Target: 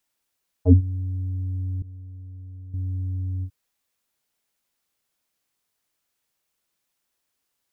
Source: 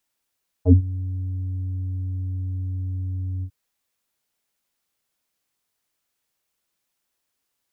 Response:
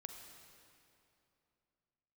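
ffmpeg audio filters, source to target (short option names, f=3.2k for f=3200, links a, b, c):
-filter_complex "[0:a]asettb=1/sr,asplit=3[a][b][c];[a]atrim=end=1.824[d];[b]atrim=start=1.82:end=2.74,asetpts=PTS-STARTPTS,afade=t=in:d=0.004:c=qsin,afade=t=out:st=0.916:d=0.004:c=qsin,agate=range=-33dB:threshold=-19dB:ratio=3:detection=peak[e];[c]atrim=start=2.736[f];[d][e]acrossfade=d=0.004:c1=hsin:c2=qsin[g];[g][f]acrossfade=d=0.004:c1=qsin:c2=hsin"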